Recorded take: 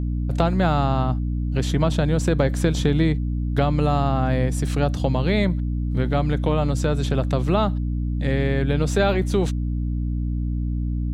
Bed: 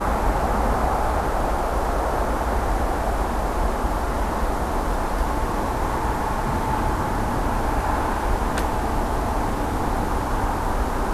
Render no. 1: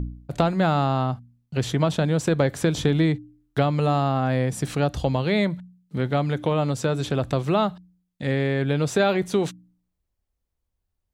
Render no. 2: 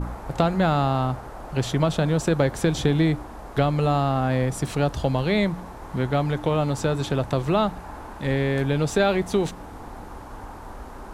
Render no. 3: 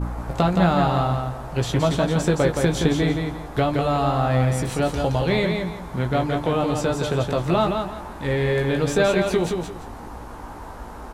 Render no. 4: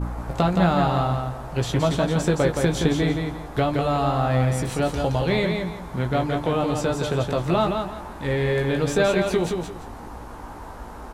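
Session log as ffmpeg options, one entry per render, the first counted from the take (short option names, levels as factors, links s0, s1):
-af "bandreject=f=60:t=h:w=4,bandreject=f=120:t=h:w=4,bandreject=f=180:t=h:w=4,bandreject=f=240:t=h:w=4,bandreject=f=300:t=h:w=4"
-filter_complex "[1:a]volume=0.168[s0];[0:a][s0]amix=inputs=2:normalize=0"
-filter_complex "[0:a]asplit=2[s0][s1];[s1]adelay=17,volume=0.531[s2];[s0][s2]amix=inputs=2:normalize=0,aecho=1:1:170|340|510|680:0.562|0.152|0.041|0.0111"
-af "volume=0.891"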